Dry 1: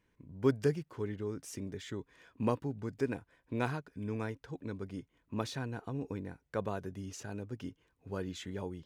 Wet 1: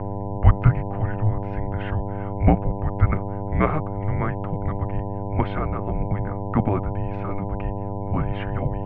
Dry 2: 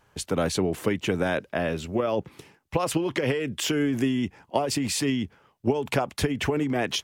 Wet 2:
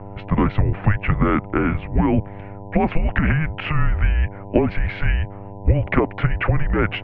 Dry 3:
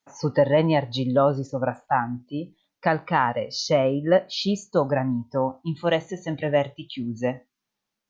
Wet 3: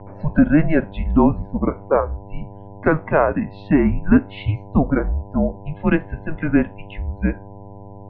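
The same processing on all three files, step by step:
mains buzz 100 Hz, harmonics 13, -39 dBFS -5 dB/octave; mistuned SSB -310 Hz 190–2700 Hz; peak normalisation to -1.5 dBFS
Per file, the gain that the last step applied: +15.0 dB, +8.5 dB, +5.5 dB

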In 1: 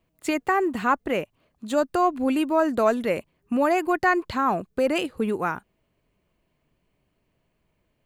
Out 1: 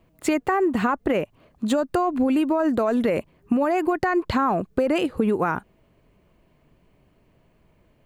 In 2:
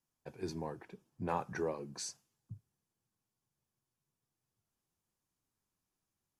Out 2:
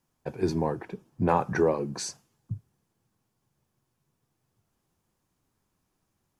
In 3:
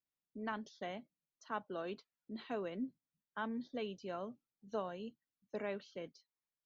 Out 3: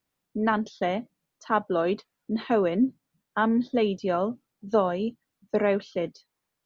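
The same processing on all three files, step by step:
treble shelf 2 kHz -7.5 dB; peak limiter -19 dBFS; compression, threshold -30 dBFS; peak normalisation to -9 dBFS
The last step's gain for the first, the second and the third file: +12.0 dB, +14.0 dB, +18.0 dB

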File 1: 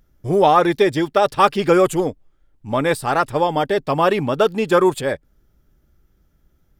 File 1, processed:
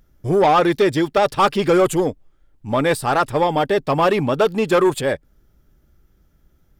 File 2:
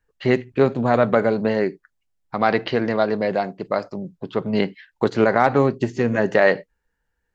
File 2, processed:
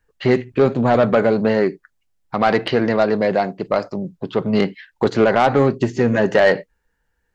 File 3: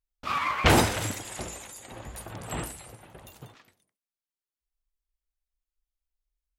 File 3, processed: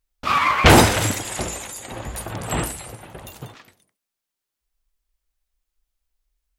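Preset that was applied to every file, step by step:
saturation -11 dBFS; normalise loudness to -18 LUFS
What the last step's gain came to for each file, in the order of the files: +2.5 dB, +5.0 dB, +10.0 dB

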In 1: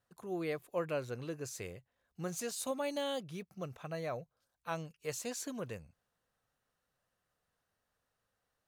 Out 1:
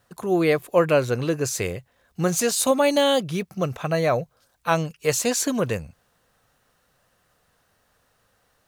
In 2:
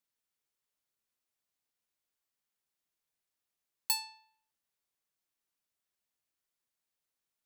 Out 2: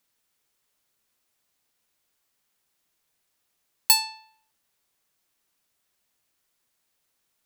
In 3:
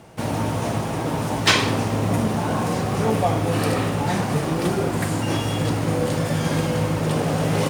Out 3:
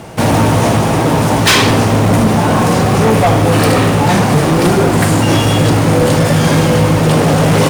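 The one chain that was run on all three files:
in parallel at -1 dB: gain riding 2 s; on the sum: overload inside the chain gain 13.5 dB; peak normalisation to -6 dBFS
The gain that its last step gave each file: +11.5 dB, +7.5 dB, +7.5 dB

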